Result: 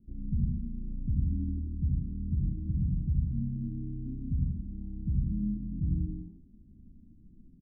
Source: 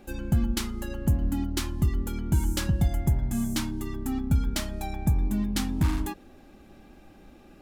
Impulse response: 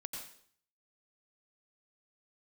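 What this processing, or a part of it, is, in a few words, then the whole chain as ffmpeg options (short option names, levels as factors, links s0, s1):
club heard from the street: -filter_complex "[0:a]alimiter=limit=0.112:level=0:latency=1:release=245,lowpass=f=220:w=0.5412,lowpass=f=220:w=1.3066[s0];[1:a]atrim=start_sample=2205[s1];[s0][s1]afir=irnorm=-1:irlink=0,aecho=1:1:62|75:0.299|0.531"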